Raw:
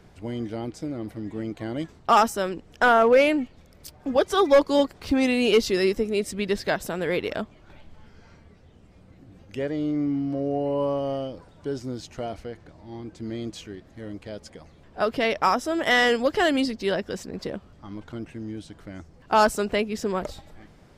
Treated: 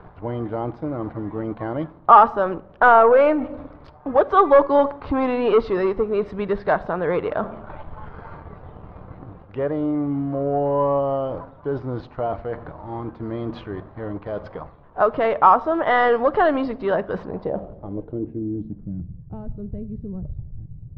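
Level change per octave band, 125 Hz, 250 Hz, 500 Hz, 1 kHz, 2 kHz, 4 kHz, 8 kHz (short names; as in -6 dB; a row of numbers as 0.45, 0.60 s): +5.5 dB, +1.0 dB, +4.0 dB, +7.0 dB, 0.0 dB, under -10 dB, under -30 dB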